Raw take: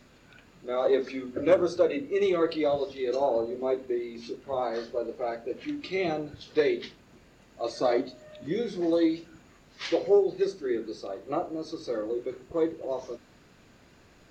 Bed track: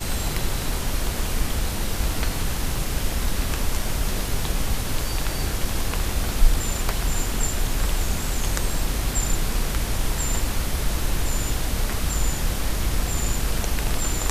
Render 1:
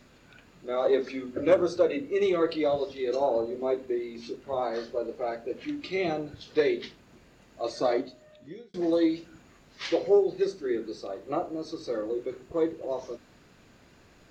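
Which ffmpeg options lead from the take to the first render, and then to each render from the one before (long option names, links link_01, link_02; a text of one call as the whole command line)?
ffmpeg -i in.wav -filter_complex "[0:a]asplit=2[link_01][link_02];[link_01]atrim=end=8.74,asetpts=PTS-STARTPTS,afade=type=out:start_time=7.81:duration=0.93[link_03];[link_02]atrim=start=8.74,asetpts=PTS-STARTPTS,afade=type=in:duration=0.004:curve=hsin[link_04];[link_03][link_04]concat=n=2:v=0:a=1" out.wav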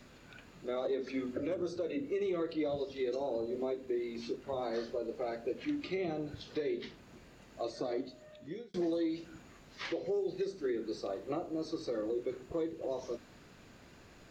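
ffmpeg -i in.wav -filter_complex "[0:a]acrossover=split=450|2100[link_01][link_02][link_03];[link_01]acompressor=threshold=-27dB:ratio=4[link_04];[link_02]acompressor=threshold=-38dB:ratio=4[link_05];[link_03]acompressor=threshold=-48dB:ratio=4[link_06];[link_04][link_05][link_06]amix=inputs=3:normalize=0,alimiter=level_in=2.5dB:limit=-24dB:level=0:latency=1:release=269,volume=-2.5dB" out.wav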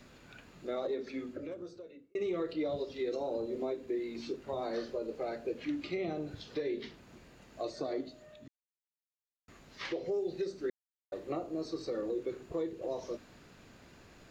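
ffmpeg -i in.wav -filter_complex "[0:a]asplit=6[link_01][link_02][link_03][link_04][link_05][link_06];[link_01]atrim=end=2.15,asetpts=PTS-STARTPTS,afade=type=out:start_time=0.76:duration=1.39[link_07];[link_02]atrim=start=2.15:end=8.48,asetpts=PTS-STARTPTS,afade=type=in:duration=0.004:curve=hsin,afade=type=out:start_time=6.326:duration=0.004:curve=hsin[link_08];[link_03]atrim=start=8.48:end=9.48,asetpts=PTS-STARTPTS,volume=0[link_09];[link_04]atrim=start=9.48:end=10.7,asetpts=PTS-STARTPTS,afade=type=in:duration=0.004:curve=hsin,afade=type=out:start_time=1.216:duration=0.004:curve=hsin[link_10];[link_05]atrim=start=10.7:end=11.12,asetpts=PTS-STARTPTS,volume=0[link_11];[link_06]atrim=start=11.12,asetpts=PTS-STARTPTS,afade=type=in:duration=0.004:curve=hsin[link_12];[link_07][link_08][link_09][link_10][link_11][link_12]concat=n=6:v=0:a=1" out.wav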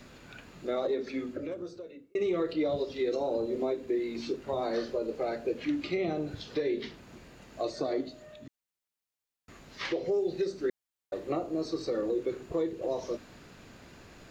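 ffmpeg -i in.wav -af "volume=5dB" out.wav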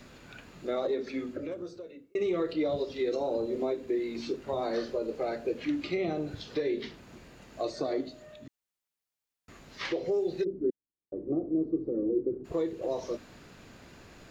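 ffmpeg -i in.wav -filter_complex "[0:a]asplit=3[link_01][link_02][link_03];[link_01]afade=type=out:start_time=10.43:duration=0.02[link_04];[link_02]lowpass=frequency=320:width_type=q:width=1.8,afade=type=in:start_time=10.43:duration=0.02,afade=type=out:start_time=12.44:duration=0.02[link_05];[link_03]afade=type=in:start_time=12.44:duration=0.02[link_06];[link_04][link_05][link_06]amix=inputs=3:normalize=0" out.wav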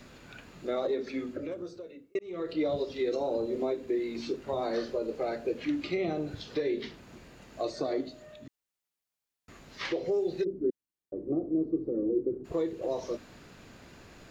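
ffmpeg -i in.wav -filter_complex "[0:a]asplit=2[link_01][link_02];[link_01]atrim=end=2.19,asetpts=PTS-STARTPTS,afade=type=out:start_time=2.186:duration=0.004:curve=hsin[link_03];[link_02]atrim=start=2.19,asetpts=PTS-STARTPTS,afade=type=in:duration=0.4[link_04];[link_03][link_04]concat=n=2:v=0:a=1" out.wav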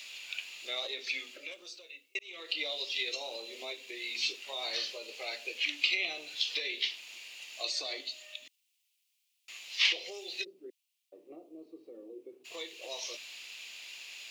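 ffmpeg -i in.wav -af "highpass=1100,highshelf=frequency=2000:width_type=q:width=3:gain=10" out.wav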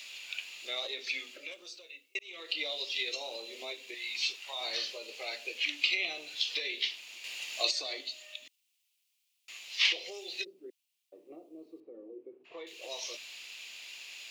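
ffmpeg -i in.wav -filter_complex "[0:a]asettb=1/sr,asplit=3[link_01][link_02][link_03];[link_01]atrim=end=3.944[link_04];[link_02]atrim=start=3.94:end=4.61,asetpts=PTS-STARTPTS,afade=type=in:duration=0.004:curve=qsin,afade=type=out:start_time=0.666:duration=0.004:curve=qsin,lowshelf=frequency=590:width_type=q:width=1.5:gain=-8[link_05];[link_03]atrim=start=4.606[link_06];[link_04][link_05]acrossfade=duration=0.004:curve1=hsin:curve2=qsin[link_07];[link_07][link_06]acrossfade=duration=0.004:curve1=qsin:curve2=hsin,asettb=1/sr,asplit=3[link_08][link_09][link_10];[link_08]atrim=end=11.804[link_11];[link_09]atrim=start=11.8:end=12.67,asetpts=PTS-STARTPTS,afade=type=in:duration=0.004:curve=qsin,afade=type=out:start_time=0.866:duration=0.004:curve=qsin,lowpass=1700[link_12];[link_10]atrim=start=12.666[link_13];[link_11][link_12]acrossfade=duration=0.004:curve1=hsin:curve2=qsin[link_14];[link_14][link_13]acrossfade=duration=0.004:curve1=qsin:curve2=hsin,asplit=3[link_15][link_16][link_17];[link_15]atrim=end=7.242[link_18];[link_16]atrim=start=7.238:end=7.712,asetpts=PTS-STARTPTS,volume=6.5dB[link_19];[link_17]atrim=start=7.708[link_20];[link_18][link_19]acrossfade=duration=0.004:curve1=hsin:curve2=hsin[link_21];[link_21][link_20]acrossfade=duration=0.004:curve1=hsin:curve2=hsin" out.wav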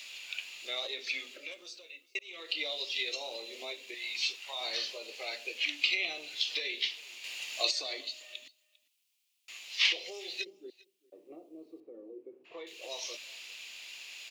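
ffmpeg -i in.wav -af "aecho=1:1:399:0.0631" out.wav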